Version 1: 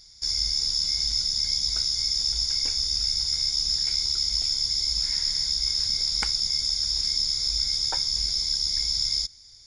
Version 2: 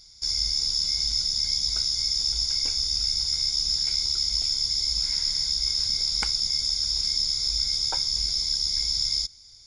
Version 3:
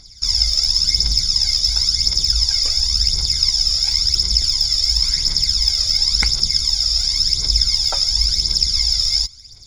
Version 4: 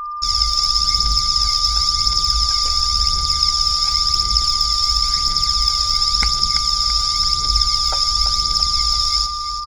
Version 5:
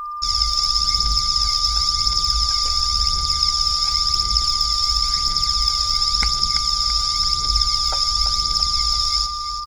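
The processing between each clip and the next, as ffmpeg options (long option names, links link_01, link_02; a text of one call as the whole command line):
ffmpeg -i in.wav -af "bandreject=frequency=1800:width=7.5" out.wav
ffmpeg -i in.wav -af "highshelf=frequency=7900:gain=-5,aphaser=in_gain=1:out_gain=1:delay=1.7:decay=0.65:speed=0.94:type=triangular,volume=7dB" out.wav
ffmpeg -i in.wav -af "aecho=1:1:335|670|1005|1340|1675|2010|2345:0.316|0.18|0.103|0.0586|0.0334|0.019|0.0108,anlmdn=10,aeval=exprs='val(0)+0.0708*sin(2*PI*1200*n/s)':channel_layout=same,volume=-1dB" out.wav
ffmpeg -i in.wav -af "acrusher=bits=9:mix=0:aa=0.000001,volume=-2dB" out.wav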